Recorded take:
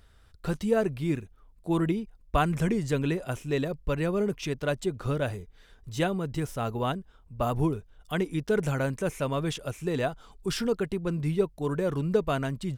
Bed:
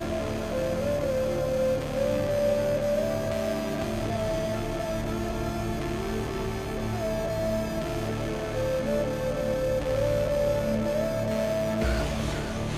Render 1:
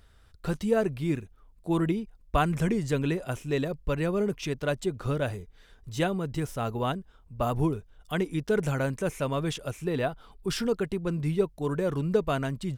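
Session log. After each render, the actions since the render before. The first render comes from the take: 9.84–10.50 s: peaking EQ 6.9 kHz -14 dB 0.47 oct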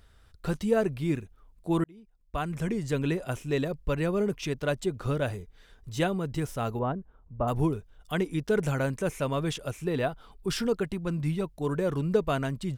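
1.84–3.13 s: fade in; 6.79–7.48 s: low-pass 1.2 kHz; 10.83–11.46 s: peaking EQ 420 Hz -11 dB 0.29 oct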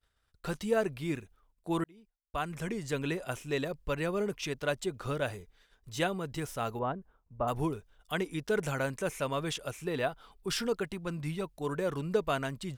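expander -48 dBFS; bass shelf 420 Hz -8.5 dB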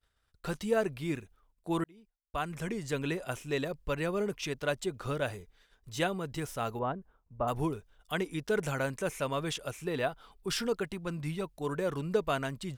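no audible change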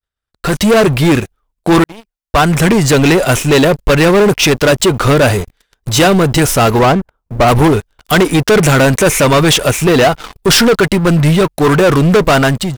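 waveshaping leveller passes 5; level rider gain up to 12.5 dB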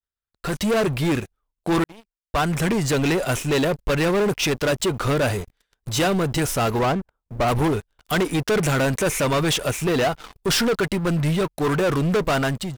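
trim -11.5 dB

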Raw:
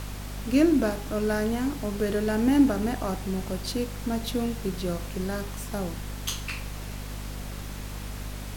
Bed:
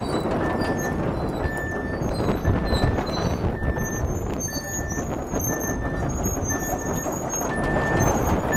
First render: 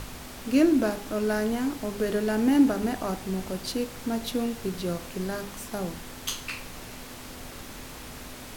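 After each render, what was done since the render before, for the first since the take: de-hum 50 Hz, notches 4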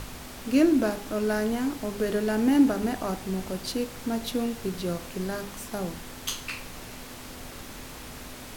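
no audible change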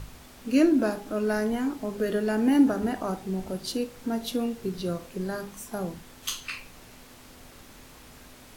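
noise print and reduce 8 dB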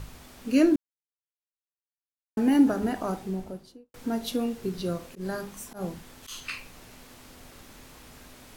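0.76–2.37 s: mute; 3.15–3.94 s: studio fade out; 5.06–6.38 s: slow attack 108 ms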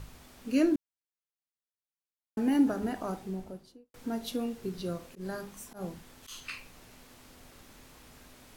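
trim -5 dB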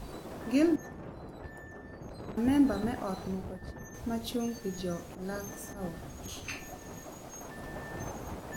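add bed -19.5 dB

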